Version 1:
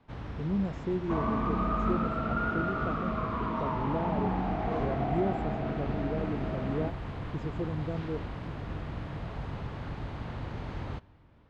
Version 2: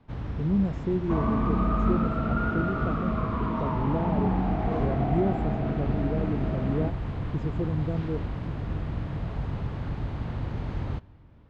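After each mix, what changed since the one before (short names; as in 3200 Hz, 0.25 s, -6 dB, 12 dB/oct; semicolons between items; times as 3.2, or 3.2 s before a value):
master: add low shelf 330 Hz +7.5 dB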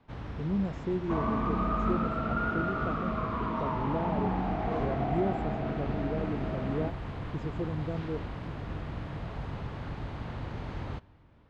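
master: add low shelf 330 Hz -7.5 dB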